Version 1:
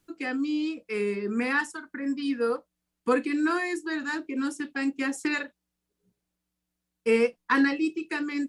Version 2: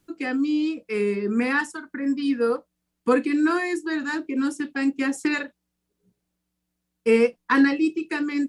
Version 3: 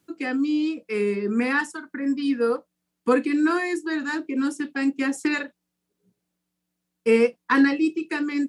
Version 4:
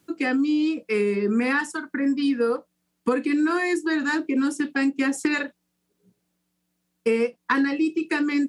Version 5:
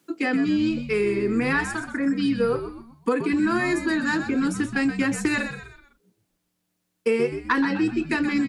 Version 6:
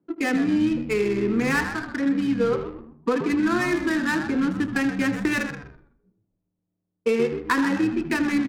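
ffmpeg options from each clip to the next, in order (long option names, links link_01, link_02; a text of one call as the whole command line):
ffmpeg -i in.wav -af "equalizer=frequency=180:width=0.35:gain=3.5,volume=2dB" out.wav
ffmpeg -i in.wav -af "highpass=110" out.wav
ffmpeg -i in.wav -af "acompressor=threshold=-24dB:ratio=6,volume=5dB" out.wav
ffmpeg -i in.wav -filter_complex "[0:a]highpass=190,asplit=2[link_01][link_02];[link_02]asplit=4[link_03][link_04][link_05][link_06];[link_03]adelay=126,afreqshift=-79,volume=-9.5dB[link_07];[link_04]adelay=252,afreqshift=-158,volume=-17.2dB[link_08];[link_05]adelay=378,afreqshift=-237,volume=-25dB[link_09];[link_06]adelay=504,afreqshift=-316,volume=-32.7dB[link_10];[link_07][link_08][link_09][link_10]amix=inputs=4:normalize=0[link_11];[link_01][link_11]amix=inputs=2:normalize=0" out.wav
ffmpeg -i in.wav -af "aecho=1:1:79|158|237|316|395:0.282|0.13|0.0596|0.0274|0.0126,adynamicsmooth=sensitivity=4.5:basefreq=550" out.wav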